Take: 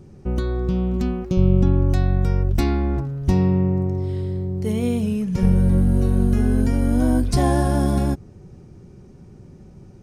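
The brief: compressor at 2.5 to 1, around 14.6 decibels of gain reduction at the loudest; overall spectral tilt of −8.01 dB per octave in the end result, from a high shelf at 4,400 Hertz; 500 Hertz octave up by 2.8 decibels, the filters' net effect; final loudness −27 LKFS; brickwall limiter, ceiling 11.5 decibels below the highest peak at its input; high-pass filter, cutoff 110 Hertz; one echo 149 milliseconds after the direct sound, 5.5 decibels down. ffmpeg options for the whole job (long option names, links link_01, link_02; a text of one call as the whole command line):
ffmpeg -i in.wav -af "highpass=110,equalizer=frequency=500:width_type=o:gain=4,highshelf=frequency=4400:gain=5,acompressor=threshold=-37dB:ratio=2.5,alimiter=level_in=8.5dB:limit=-24dB:level=0:latency=1,volume=-8.5dB,aecho=1:1:149:0.531,volume=13dB" out.wav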